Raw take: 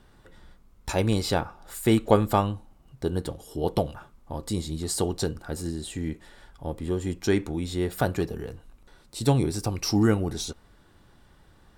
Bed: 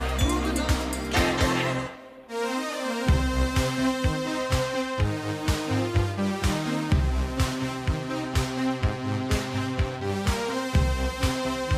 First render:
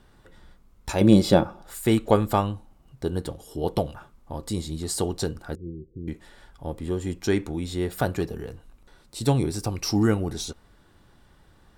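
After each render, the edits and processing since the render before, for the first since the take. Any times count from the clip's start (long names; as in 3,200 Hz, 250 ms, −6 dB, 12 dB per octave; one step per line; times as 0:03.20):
0:01.01–0:01.62: hollow resonant body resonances 200/330/550/3,400 Hz, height 13 dB
0:05.55–0:06.08: Chebyshev low-pass with heavy ripple 520 Hz, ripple 9 dB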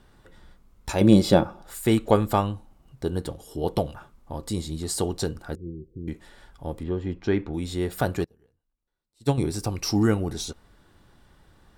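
0:06.83–0:07.54: high-frequency loss of the air 240 metres
0:08.24–0:09.38: expander for the loud parts 2.5 to 1, over −37 dBFS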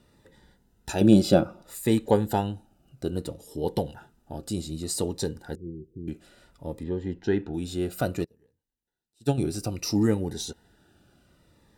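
notch comb filter 1,100 Hz
phaser whose notches keep moving one way falling 0.61 Hz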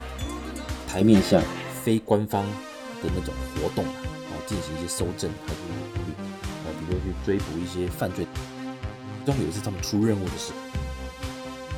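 mix in bed −8.5 dB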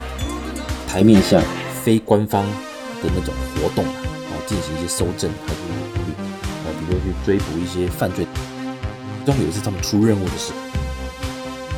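level +7 dB
brickwall limiter −1 dBFS, peak gain reduction 3 dB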